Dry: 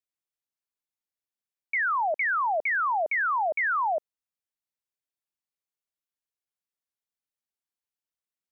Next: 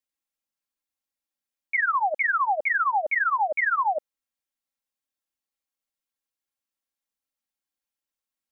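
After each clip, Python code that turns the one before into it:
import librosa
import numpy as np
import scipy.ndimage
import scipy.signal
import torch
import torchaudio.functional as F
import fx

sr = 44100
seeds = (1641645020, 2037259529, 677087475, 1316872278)

y = x + 0.82 * np.pad(x, (int(3.7 * sr / 1000.0), 0))[:len(x)]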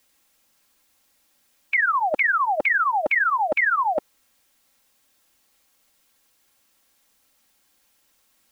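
y = fx.spectral_comp(x, sr, ratio=2.0)
y = y * 10.0 ** (6.0 / 20.0)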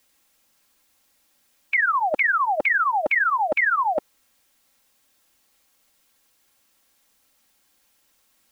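y = x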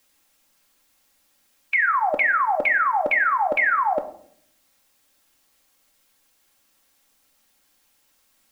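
y = fx.room_shoebox(x, sr, seeds[0], volume_m3=110.0, walls='mixed', distance_m=0.3)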